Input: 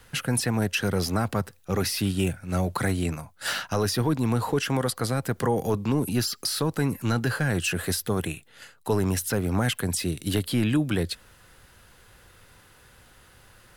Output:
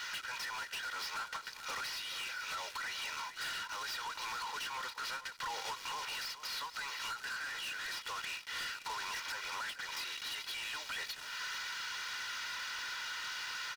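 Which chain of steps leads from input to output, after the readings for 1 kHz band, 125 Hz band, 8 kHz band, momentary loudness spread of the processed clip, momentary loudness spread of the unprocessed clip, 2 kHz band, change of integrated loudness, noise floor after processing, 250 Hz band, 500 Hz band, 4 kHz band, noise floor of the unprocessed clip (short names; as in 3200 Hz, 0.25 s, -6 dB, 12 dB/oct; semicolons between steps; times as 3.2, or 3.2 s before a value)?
-7.0 dB, under -40 dB, -12.0 dB, 1 LU, 5 LU, -4.5 dB, -13.0 dB, -51 dBFS, -38.0 dB, -26.5 dB, -5.0 dB, -56 dBFS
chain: CVSD 32 kbps; HPF 1100 Hz 24 dB/oct; comb 2.1 ms, depth 70%; compressor 12:1, threshold -45 dBFS, peak gain reduction 20.5 dB; sample leveller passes 5; limiter -43.5 dBFS, peak gain reduction 11.5 dB; vocal rider 0.5 s; echo 0.433 s -12 dB; ending taper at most 200 dB/s; gain +6.5 dB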